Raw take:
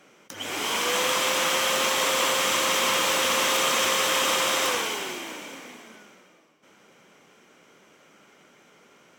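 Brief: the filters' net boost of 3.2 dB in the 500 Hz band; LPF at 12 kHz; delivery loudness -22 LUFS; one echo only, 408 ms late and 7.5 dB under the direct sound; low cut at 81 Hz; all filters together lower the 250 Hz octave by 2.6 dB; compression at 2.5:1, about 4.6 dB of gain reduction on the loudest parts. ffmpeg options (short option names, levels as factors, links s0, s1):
-af "highpass=81,lowpass=12000,equalizer=f=250:t=o:g=-5.5,equalizer=f=500:t=o:g=4.5,acompressor=threshold=0.0501:ratio=2.5,aecho=1:1:408:0.422,volume=1.58"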